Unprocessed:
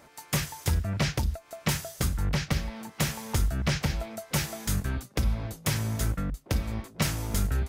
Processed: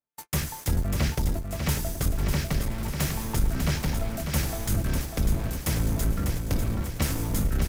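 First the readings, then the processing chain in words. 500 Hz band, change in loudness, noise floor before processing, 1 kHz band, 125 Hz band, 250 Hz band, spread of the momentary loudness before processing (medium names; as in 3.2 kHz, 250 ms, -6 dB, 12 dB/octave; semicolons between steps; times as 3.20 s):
+2.0 dB, +1.5 dB, -55 dBFS, +0.5 dB, +2.0 dB, +2.5 dB, 4 LU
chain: octave divider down 1 oct, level +1 dB; treble shelf 7.3 kHz +11.5 dB; in parallel at -7.5 dB: companded quantiser 2-bit; on the sum: saturation -9 dBFS, distortion -19 dB; treble shelf 2.6 kHz -6 dB; on a send: feedback delay 597 ms, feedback 52%, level -6.5 dB; on the sum: gate -38 dBFS, range -40 dB; trim -3 dB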